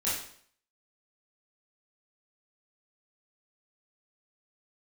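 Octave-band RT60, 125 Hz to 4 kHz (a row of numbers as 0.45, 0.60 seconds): 0.55, 0.55, 0.60, 0.55, 0.55, 0.55 seconds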